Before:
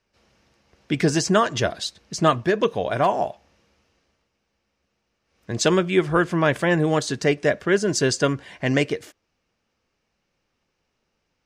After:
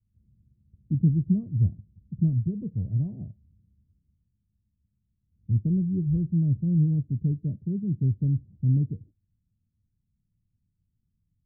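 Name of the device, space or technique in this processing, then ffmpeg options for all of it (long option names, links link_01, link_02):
the neighbour's flat through the wall: -filter_complex "[0:a]lowpass=frequency=180:width=0.5412,lowpass=frequency=180:width=1.3066,equalizer=frequency=100:width_type=o:width=0.47:gain=8,asplit=3[link_01][link_02][link_03];[link_01]afade=type=out:start_time=7.44:duration=0.02[link_04];[link_02]highpass=97,afade=type=in:start_time=7.44:duration=0.02,afade=type=out:start_time=8.02:duration=0.02[link_05];[link_03]afade=type=in:start_time=8.02:duration=0.02[link_06];[link_04][link_05][link_06]amix=inputs=3:normalize=0,volume=4dB"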